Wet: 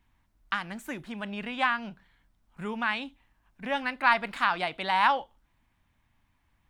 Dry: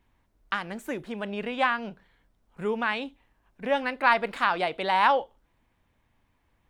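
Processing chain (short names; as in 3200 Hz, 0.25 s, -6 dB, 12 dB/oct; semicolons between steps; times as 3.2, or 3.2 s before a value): bell 460 Hz -11 dB 0.9 oct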